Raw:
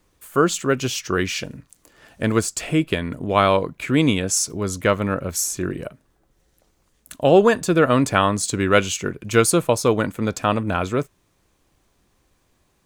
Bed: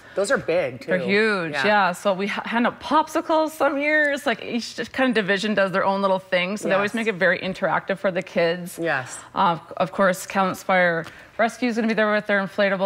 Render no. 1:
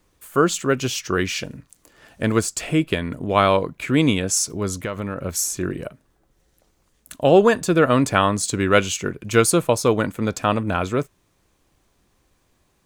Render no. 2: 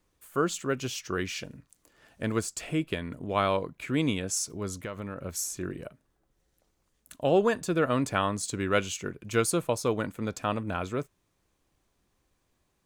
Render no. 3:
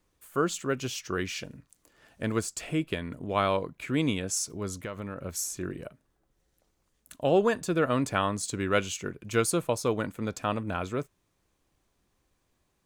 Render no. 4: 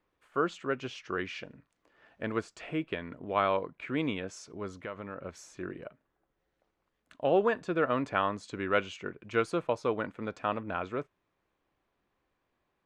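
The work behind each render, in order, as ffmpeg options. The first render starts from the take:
-filter_complex "[0:a]asettb=1/sr,asplit=3[s0][s1][s2];[s0]atrim=end=4.834[s3];[s1]atrim=start=4.83:end=5.24,asetpts=PTS-STARTPTS,afade=t=in:d=0.004:c=qsin,afade=t=out:st=0.406:d=0.004:c=qsin,acompressor=threshold=0.0794:ratio=10:attack=3.2:release=140:knee=1:detection=peak[s4];[s2]atrim=start=5.236[s5];[s3][s4]acrossfade=d=0.004:c1=hsin:c2=qsin[s6];[s6][s5]acrossfade=d=0.004:c1=qsin:c2=hsin"
-af "volume=0.335"
-af anull
-af "lowpass=2500,lowshelf=f=220:g=-11.5"

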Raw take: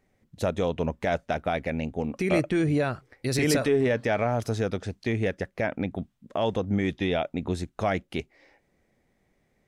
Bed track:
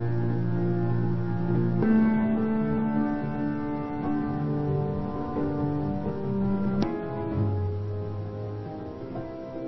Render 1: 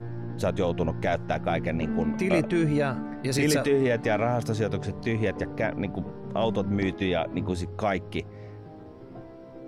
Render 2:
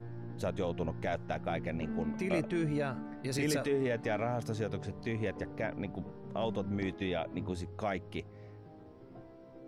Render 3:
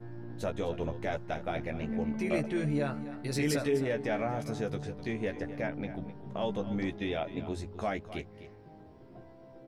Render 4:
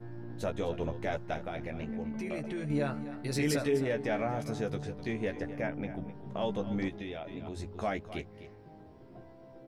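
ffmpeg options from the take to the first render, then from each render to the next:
-filter_complex "[1:a]volume=0.376[s0];[0:a][s0]amix=inputs=2:normalize=0"
-af "volume=0.376"
-filter_complex "[0:a]asplit=2[s0][s1];[s1]adelay=14,volume=0.531[s2];[s0][s2]amix=inputs=2:normalize=0,aecho=1:1:256:0.2"
-filter_complex "[0:a]asettb=1/sr,asplit=3[s0][s1][s2];[s0]atrim=end=1.444[s3];[s1]atrim=start=1.44:end=2.7,asetpts=PTS-STARTPTS,afade=t=in:d=0.004:c=qsin,afade=t=out:st=1.256:d=0.004:c=qsin,acompressor=threshold=0.02:ratio=3:attack=3.2:release=140:knee=1:detection=peak[s4];[s2]atrim=start=2.696[s5];[s3][s4]acrossfade=d=0.004:c1=hsin:c2=qsin[s6];[s6][s5]acrossfade=d=0.004:c1=qsin:c2=hsin,asettb=1/sr,asplit=3[s7][s8][s9];[s7]atrim=end=5.534[s10];[s8]atrim=start=5.53:end=6.14,asetpts=PTS-STARTPTS,afade=t=in:d=0.004:c=qsin,afade=t=out:st=0.606:d=0.004:c=qsin,equalizer=f=4100:w=5.5:g=-13.5[s11];[s9]atrim=start=6.136[s12];[s10][s11]acrossfade=d=0.004:c1=hsin:c2=qsin[s13];[s13][s12]acrossfade=d=0.004:c1=qsin:c2=hsin,asettb=1/sr,asplit=3[s14][s15][s16];[s14]atrim=end=6.884[s17];[s15]atrim=start=6.88:end=7.6,asetpts=PTS-STARTPTS,afade=t=in:d=0.004:c=qsin,afade=t=out:st=0.716:d=0.004:c=qsin,acompressor=threshold=0.0158:ratio=6:attack=3.2:release=140:knee=1:detection=peak[s18];[s16]atrim=start=7.596[s19];[s17][s18]acrossfade=d=0.004:c1=hsin:c2=qsin[s20];[s20][s19]acrossfade=d=0.004:c1=qsin:c2=hsin"

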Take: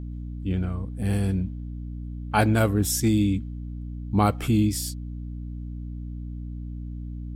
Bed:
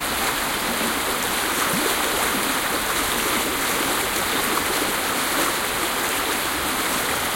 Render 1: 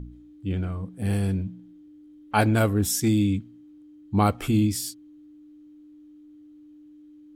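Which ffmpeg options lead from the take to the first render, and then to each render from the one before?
-af "bandreject=f=60:t=h:w=4,bandreject=f=120:t=h:w=4,bandreject=f=180:t=h:w=4,bandreject=f=240:t=h:w=4"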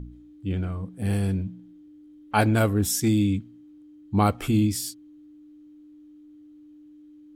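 -af anull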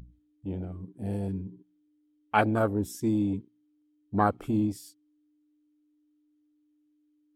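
-af "afwtdn=0.0398,lowshelf=f=200:g=-11.5"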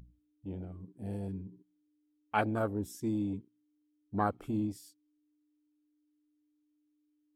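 -af "volume=0.473"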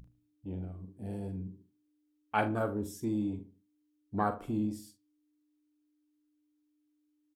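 -filter_complex "[0:a]asplit=2[s0][s1];[s1]adelay=43,volume=0.316[s2];[s0][s2]amix=inputs=2:normalize=0,asplit=2[s3][s4];[s4]adelay=75,lowpass=f=1200:p=1,volume=0.224,asplit=2[s5][s6];[s6]adelay=75,lowpass=f=1200:p=1,volume=0.33,asplit=2[s7][s8];[s8]adelay=75,lowpass=f=1200:p=1,volume=0.33[s9];[s3][s5][s7][s9]amix=inputs=4:normalize=0"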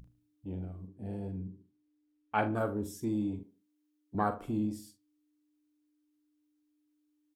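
-filter_complex "[0:a]asettb=1/sr,asplit=3[s0][s1][s2];[s0]atrim=end=0.874[s3];[s1]atrim=start=0.87:end=2.53,asetpts=PTS-STARTPTS,afade=t=in:d=0.004:c=qsin,afade=t=out:st=1.656:d=0.004:c=qsin,aemphasis=mode=reproduction:type=50kf[s4];[s2]atrim=start=2.526[s5];[s3][s4]acrossfade=d=0.004:c1=hsin:c2=qsin[s6];[s6][s5]acrossfade=d=0.004:c1=qsin:c2=hsin,asettb=1/sr,asplit=3[s7][s8][s9];[s7]atrim=end=3.434[s10];[s8]atrim=start=3.43:end=4.15,asetpts=PTS-STARTPTS,afade=t=in:d=0.004:c=qsin,afade=t=out:st=0.716:d=0.004:c=qsin,highpass=230[s11];[s9]atrim=start=4.146[s12];[s10][s11]acrossfade=d=0.004:c1=hsin:c2=qsin[s13];[s13][s12]acrossfade=d=0.004:c1=qsin:c2=hsin"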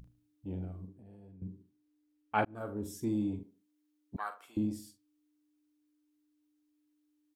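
-filter_complex "[0:a]asettb=1/sr,asplit=3[s0][s1][s2];[s0]atrim=end=0.924[s3];[s1]atrim=start=0.92:end=1.42,asetpts=PTS-STARTPTS,afade=t=in:d=0.004:c=qsin,afade=t=out:st=0.496:d=0.004:c=qsin,acompressor=threshold=0.00178:ratio=4:attack=3.2:release=140:knee=1:detection=peak[s4];[s2]atrim=start=1.416[s5];[s3][s4]acrossfade=d=0.004:c1=hsin:c2=qsin[s6];[s6][s5]acrossfade=d=0.004:c1=qsin:c2=hsin,asettb=1/sr,asplit=3[s7][s8][s9];[s7]atrim=end=4.164[s10];[s8]atrim=start=4.16:end=4.57,asetpts=PTS-STARTPTS,afade=t=in:d=0.004:c=qsin,afade=t=out:st=0.406:d=0.004:c=qsin,highpass=1400[s11];[s9]atrim=start=4.566[s12];[s10][s11]acrossfade=d=0.004:c1=hsin:c2=qsin[s13];[s13][s12]acrossfade=d=0.004:c1=qsin:c2=hsin,asplit=2[s14][s15];[s14]atrim=end=2.45,asetpts=PTS-STARTPTS,afade=t=out:st=2.446:d=0.004:c=hsin[s16];[s15]atrim=start=2.45,asetpts=PTS-STARTPTS,afade=t=in:d=0.49[s17];[s16][s17]concat=n=2:v=0:a=1"

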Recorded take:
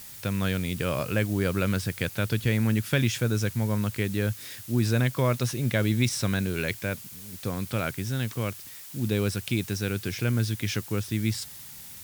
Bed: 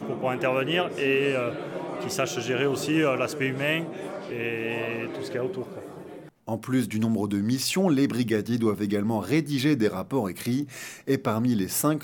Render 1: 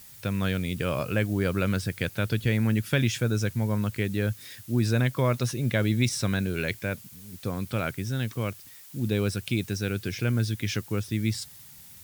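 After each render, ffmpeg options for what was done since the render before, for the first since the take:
-af "afftdn=nr=6:nf=-44"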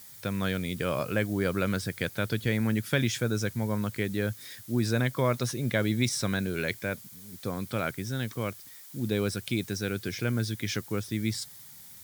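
-af "highpass=f=160:p=1,equalizer=f=2700:w=7.2:g=-7.5"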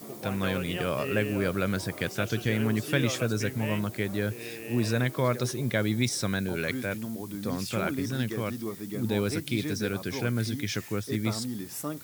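-filter_complex "[1:a]volume=0.282[s0];[0:a][s0]amix=inputs=2:normalize=0"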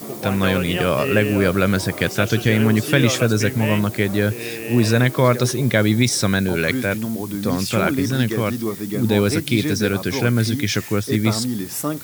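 -af "volume=3.35,alimiter=limit=0.708:level=0:latency=1"

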